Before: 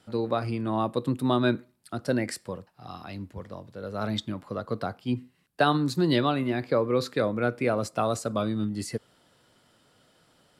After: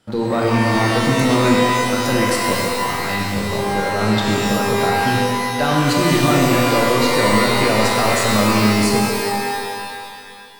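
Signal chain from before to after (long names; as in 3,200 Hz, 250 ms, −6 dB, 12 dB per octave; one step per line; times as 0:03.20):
leveller curve on the samples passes 2
brickwall limiter −18.5 dBFS, peak gain reduction 10 dB
reverb with rising layers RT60 2.2 s, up +12 semitones, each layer −2 dB, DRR −2 dB
level +4.5 dB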